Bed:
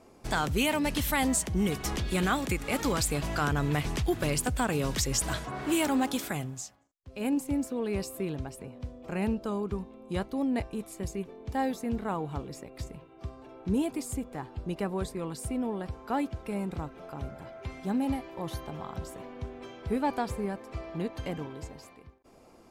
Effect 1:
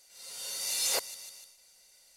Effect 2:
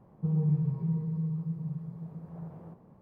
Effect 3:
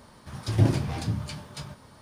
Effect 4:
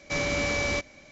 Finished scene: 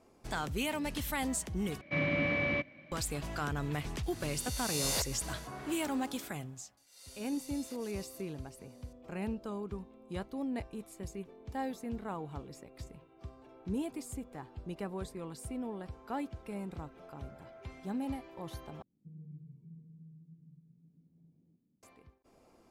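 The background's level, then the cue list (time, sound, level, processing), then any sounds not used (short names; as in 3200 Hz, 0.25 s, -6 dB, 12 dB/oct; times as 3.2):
bed -7.5 dB
1.81 replace with 4 -2 dB + speaker cabinet 110–2700 Hz, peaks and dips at 150 Hz +7 dB, 290 Hz +3 dB, 420 Hz -9 dB, 850 Hz -9 dB, 1400 Hz -7 dB
4.03 add 1 -7 dB + spectral swells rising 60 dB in 1.08 s
6.77 add 1 -8.5 dB + compressor 12:1, threshold -40 dBFS
18.82 replace with 2 -12.5 dB + vocal tract filter i
not used: 3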